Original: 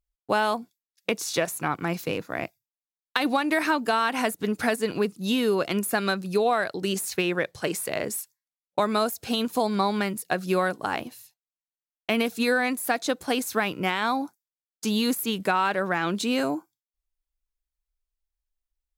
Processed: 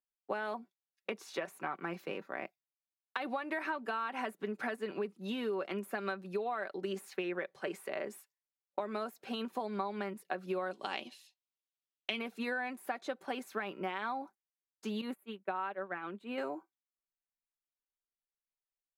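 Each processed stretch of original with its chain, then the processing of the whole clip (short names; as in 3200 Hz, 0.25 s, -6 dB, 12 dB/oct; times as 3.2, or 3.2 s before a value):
10.71–12.19 LPF 8300 Hz + resonant high shelf 2300 Hz +12.5 dB, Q 1.5
15.01–16.38 expander -21 dBFS + bell 5700 Hz -13 dB 0.62 oct
whole clip: three-band isolator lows -24 dB, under 220 Hz, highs -16 dB, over 2900 Hz; comb 5.2 ms, depth 47%; compressor 4:1, threshold -25 dBFS; gain -8 dB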